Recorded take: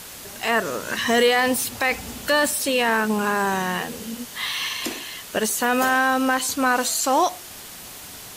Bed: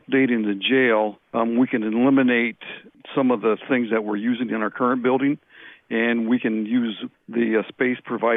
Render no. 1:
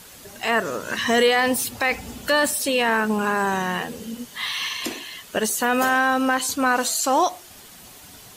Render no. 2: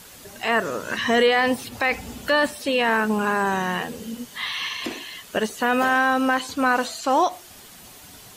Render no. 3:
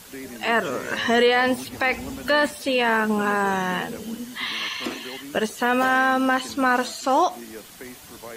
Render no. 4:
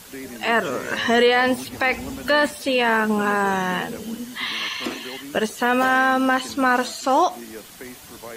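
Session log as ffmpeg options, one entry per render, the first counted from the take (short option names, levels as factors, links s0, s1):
-af "afftdn=nr=7:nf=-39"
-filter_complex "[0:a]acrossover=split=4100[s0][s1];[s1]acompressor=threshold=0.01:ratio=4:attack=1:release=60[s2];[s0][s2]amix=inputs=2:normalize=0"
-filter_complex "[1:a]volume=0.106[s0];[0:a][s0]amix=inputs=2:normalize=0"
-af "volume=1.19"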